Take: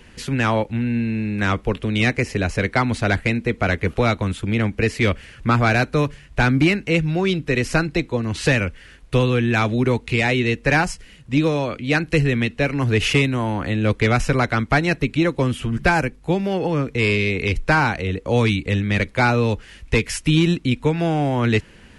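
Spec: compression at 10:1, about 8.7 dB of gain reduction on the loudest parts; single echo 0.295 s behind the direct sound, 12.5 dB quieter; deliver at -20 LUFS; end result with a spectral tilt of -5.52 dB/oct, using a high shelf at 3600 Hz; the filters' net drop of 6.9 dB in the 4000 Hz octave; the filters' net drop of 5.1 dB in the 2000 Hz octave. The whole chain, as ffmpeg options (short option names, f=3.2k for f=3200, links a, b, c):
-af "equalizer=f=2k:t=o:g=-4,highshelf=f=3.6k:g=-6.5,equalizer=f=4k:t=o:g=-3.5,acompressor=threshold=-22dB:ratio=10,aecho=1:1:295:0.237,volume=7.5dB"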